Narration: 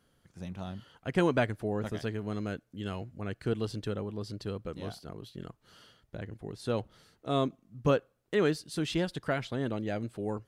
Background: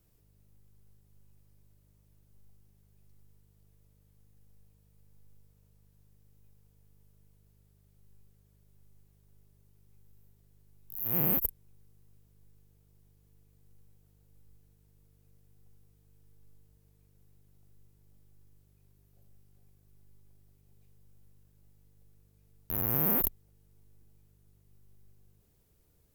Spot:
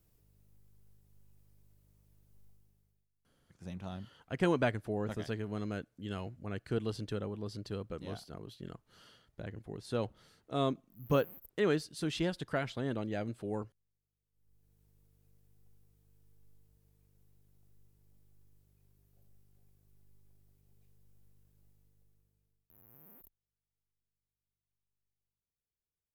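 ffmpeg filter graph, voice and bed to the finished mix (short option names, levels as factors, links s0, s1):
-filter_complex "[0:a]adelay=3250,volume=0.708[s0];[1:a]volume=8.91,afade=t=out:st=2.43:d=0.65:silence=0.0707946,afade=t=in:st=14.32:d=0.49:silence=0.0891251,afade=t=out:st=21.63:d=1.09:silence=0.0446684[s1];[s0][s1]amix=inputs=2:normalize=0"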